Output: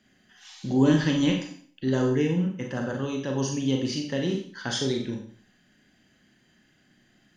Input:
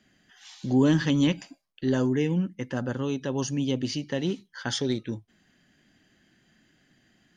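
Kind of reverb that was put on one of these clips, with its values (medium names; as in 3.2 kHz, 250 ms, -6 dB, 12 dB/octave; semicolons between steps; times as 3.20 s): Schroeder reverb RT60 0.5 s, combs from 30 ms, DRR 1.5 dB; trim -1 dB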